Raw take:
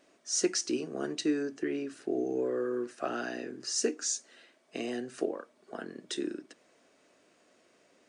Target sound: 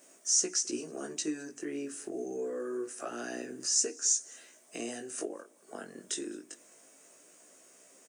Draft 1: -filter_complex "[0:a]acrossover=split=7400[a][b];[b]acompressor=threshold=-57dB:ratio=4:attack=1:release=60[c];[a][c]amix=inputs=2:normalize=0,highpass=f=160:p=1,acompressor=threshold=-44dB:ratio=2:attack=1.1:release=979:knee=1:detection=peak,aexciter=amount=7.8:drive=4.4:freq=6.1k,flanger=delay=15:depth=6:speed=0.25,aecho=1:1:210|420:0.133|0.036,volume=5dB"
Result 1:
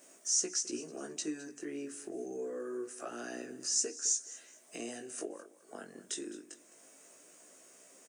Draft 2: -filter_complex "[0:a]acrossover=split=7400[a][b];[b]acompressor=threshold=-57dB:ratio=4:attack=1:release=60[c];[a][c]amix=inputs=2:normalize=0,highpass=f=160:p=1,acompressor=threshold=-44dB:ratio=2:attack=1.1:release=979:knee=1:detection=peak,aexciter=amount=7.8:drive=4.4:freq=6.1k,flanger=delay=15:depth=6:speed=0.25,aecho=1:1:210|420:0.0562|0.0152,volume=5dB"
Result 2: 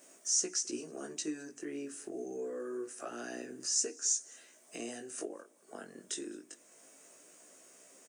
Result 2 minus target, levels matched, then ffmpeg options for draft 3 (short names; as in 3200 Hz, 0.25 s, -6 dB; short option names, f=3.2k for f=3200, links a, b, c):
compressor: peak gain reduction +3.5 dB
-filter_complex "[0:a]acrossover=split=7400[a][b];[b]acompressor=threshold=-57dB:ratio=4:attack=1:release=60[c];[a][c]amix=inputs=2:normalize=0,highpass=f=160:p=1,acompressor=threshold=-37dB:ratio=2:attack=1.1:release=979:knee=1:detection=peak,aexciter=amount=7.8:drive=4.4:freq=6.1k,flanger=delay=15:depth=6:speed=0.25,aecho=1:1:210|420:0.0562|0.0152,volume=5dB"